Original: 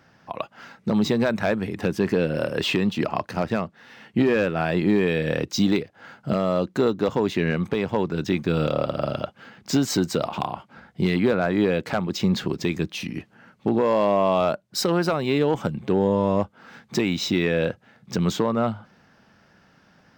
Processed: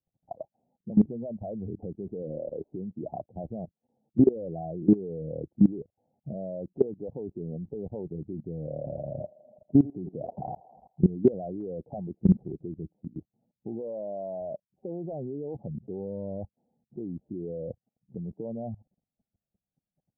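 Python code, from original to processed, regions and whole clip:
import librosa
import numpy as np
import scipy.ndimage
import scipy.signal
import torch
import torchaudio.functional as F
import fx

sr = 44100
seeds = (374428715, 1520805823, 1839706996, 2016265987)

y = fx.chain(x, sr, fx.weighting(curve='D'),
    fx.sample_gate(floor_db=-33.5), at=(2.22, 2.73))
y = fx.chain(y, sr, fx.peak_eq(hz=160.0, db=2.5, octaves=0.52),
    fx.echo_thinned(ms=82, feedback_pct=84, hz=330.0, wet_db=-9.0), at=(8.68, 11.09))
y = fx.bin_expand(y, sr, power=1.5)
y = scipy.signal.sosfilt(scipy.signal.butter(12, 750.0, 'lowpass', fs=sr, output='sos'), y)
y = fx.level_steps(y, sr, step_db=20)
y = y * 10.0 ** (5.0 / 20.0)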